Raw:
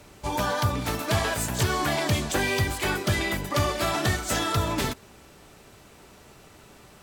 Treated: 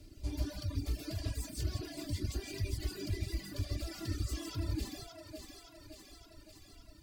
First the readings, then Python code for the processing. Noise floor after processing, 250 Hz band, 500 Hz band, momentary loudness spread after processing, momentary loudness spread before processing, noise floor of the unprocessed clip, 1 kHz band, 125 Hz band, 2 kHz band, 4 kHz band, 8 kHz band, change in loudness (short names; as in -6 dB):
-58 dBFS, -11.5 dB, -18.5 dB, 16 LU, 4 LU, -52 dBFS, -27.5 dB, -9.5 dB, -23.0 dB, -15.0 dB, -16.0 dB, -14.0 dB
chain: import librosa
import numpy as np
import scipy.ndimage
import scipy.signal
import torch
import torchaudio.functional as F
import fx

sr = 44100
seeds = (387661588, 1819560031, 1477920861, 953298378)

y = fx.rider(x, sr, range_db=4, speed_s=0.5)
y = 10.0 ** (-25.0 / 20.0) * np.tanh(y / 10.0 ** (-25.0 / 20.0))
y = fx.spec_paint(y, sr, seeds[0], shape='fall', start_s=3.91, length_s=1.33, low_hz=610.0, high_hz=1500.0, level_db=-37.0)
y = fx.tone_stack(y, sr, knobs='10-0-1')
y = fx.rev_gated(y, sr, seeds[1], gate_ms=190, shape='rising', drr_db=0.0)
y = fx.dereverb_blind(y, sr, rt60_s=0.59)
y = fx.peak_eq(y, sr, hz=4700.0, db=10.5, octaves=0.27)
y = fx.comb_fb(y, sr, f0_hz=280.0, decay_s=0.74, harmonics='all', damping=0.0, mix_pct=70)
y = fx.echo_thinned(y, sr, ms=567, feedback_pct=67, hz=290.0, wet_db=-6.5)
y = fx.dereverb_blind(y, sr, rt60_s=1.3)
y = y + 0.5 * np.pad(y, (int(2.9 * sr / 1000.0), 0))[:len(y)]
y = fx.small_body(y, sr, hz=(310.0, 620.0), ring_ms=45, db=9)
y = y * 10.0 ** (15.0 / 20.0)